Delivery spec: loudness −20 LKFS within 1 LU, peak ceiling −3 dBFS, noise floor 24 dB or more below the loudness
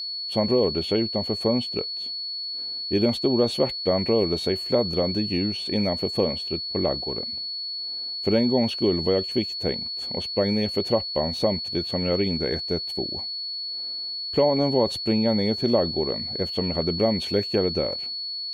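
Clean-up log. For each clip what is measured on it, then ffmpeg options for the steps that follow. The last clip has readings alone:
interfering tone 4,400 Hz; level of the tone −29 dBFS; integrated loudness −24.5 LKFS; sample peak −9.0 dBFS; target loudness −20.0 LKFS
→ -af "bandreject=frequency=4400:width=30"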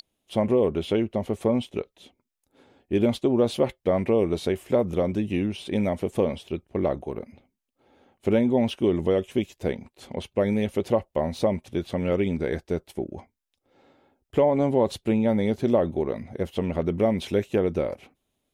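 interfering tone none found; integrated loudness −25.5 LKFS; sample peak −10.0 dBFS; target loudness −20.0 LKFS
→ -af "volume=5.5dB"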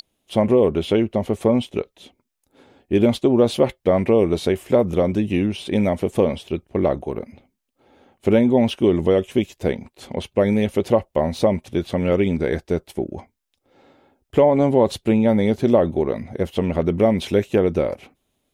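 integrated loudness −20.0 LKFS; sample peak −4.5 dBFS; background noise floor −74 dBFS

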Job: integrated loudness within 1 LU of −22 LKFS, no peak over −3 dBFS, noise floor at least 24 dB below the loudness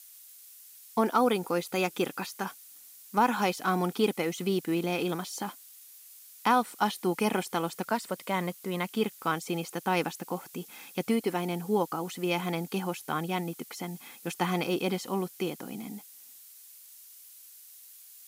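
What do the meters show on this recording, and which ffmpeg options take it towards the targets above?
background noise floor −52 dBFS; target noise floor −55 dBFS; integrated loudness −30.5 LKFS; sample peak −12.0 dBFS; target loudness −22.0 LKFS
→ -af "afftdn=noise_reduction=6:noise_floor=-52"
-af "volume=8.5dB"

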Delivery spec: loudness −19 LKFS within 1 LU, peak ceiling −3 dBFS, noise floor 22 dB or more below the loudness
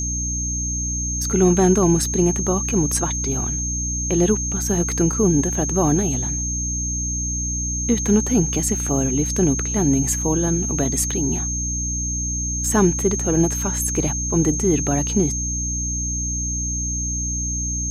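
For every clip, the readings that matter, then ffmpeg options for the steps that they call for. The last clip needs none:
mains hum 60 Hz; hum harmonics up to 300 Hz; level of the hum −25 dBFS; interfering tone 6,400 Hz; level of the tone −24 dBFS; integrated loudness −20.0 LKFS; sample peak −5.0 dBFS; target loudness −19.0 LKFS
→ -af "bandreject=frequency=60:width_type=h:width=4,bandreject=frequency=120:width_type=h:width=4,bandreject=frequency=180:width_type=h:width=4,bandreject=frequency=240:width_type=h:width=4,bandreject=frequency=300:width_type=h:width=4"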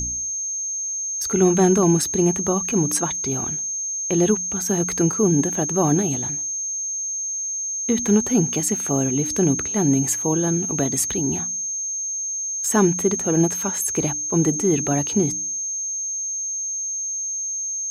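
mains hum none found; interfering tone 6,400 Hz; level of the tone −24 dBFS
→ -af "bandreject=frequency=6400:width=30"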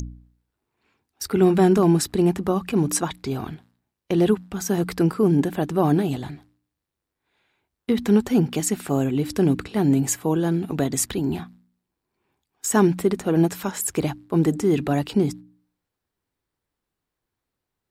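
interfering tone none found; integrated loudness −22.0 LKFS; sample peak −6.5 dBFS; target loudness −19.0 LKFS
→ -af "volume=3dB"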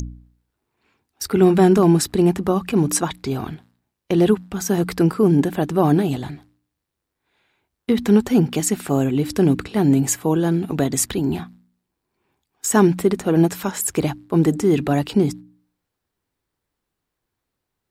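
integrated loudness −19.0 LKFS; sample peak −3.5 dBFS; background noise floor −81 dBFS

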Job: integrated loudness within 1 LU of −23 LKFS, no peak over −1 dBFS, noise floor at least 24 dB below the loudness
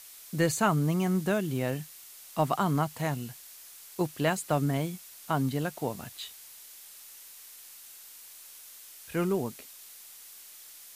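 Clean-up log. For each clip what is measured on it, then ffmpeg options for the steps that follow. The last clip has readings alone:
background noise floor −50 dBFS; target noise floor −54 dBFS; integrated loudness −30.0 LKFS; sample peak −13.0 dBFS; target loudness −23.0 LKFS
→ -af "afftdn=noise_reduction=6:noise_floor=-50"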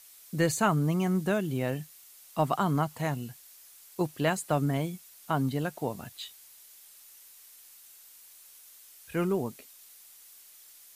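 background noise floor −54 dBFS; integrated loudness −30.0 LKFS; sample peak −13.0 dBFS; target loudness −23.0 LKFS
→ -af "volume=7dB"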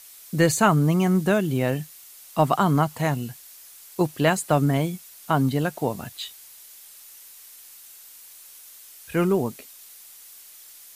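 integrated loudness −23.0 LKFS; sample peak −6.0 dBFS; background noise floor −47 dBFS

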